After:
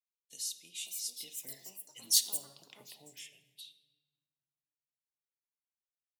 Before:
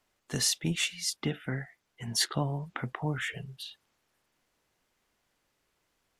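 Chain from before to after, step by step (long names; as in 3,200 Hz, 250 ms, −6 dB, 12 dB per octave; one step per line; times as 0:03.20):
source passing by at 0:02.06, 8 m/s, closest 2.9 metres
Chebyshev band-stop filter 570–2,900 Hz, order 2
downward expander −57 dBFS
first difference
in parallel at +2 dB: downward compressor, threshold −60 dBFS, peak gain reduction 30 dB
on the sum: hollow resonant body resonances 990/2,500/3,800 Hz, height 9 dB
on a send at −11 dB: convolution reverb RT60 1.4 s, pre-delay 4 ms
on the sum: delay with pitch and tempo change per echo 635 ms, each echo +6 semitones, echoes 2
level +3 dB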